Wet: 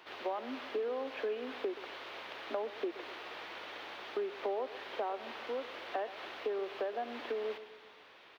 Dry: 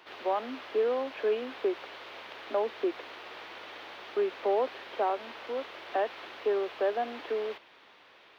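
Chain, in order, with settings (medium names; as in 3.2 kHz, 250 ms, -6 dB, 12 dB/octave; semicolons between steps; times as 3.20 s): compression 4:1, threshold -33 dBFS, peak gain reduction 9 dB; feedback delay 126 ms, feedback 53%, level -15 dB; trim -1 dB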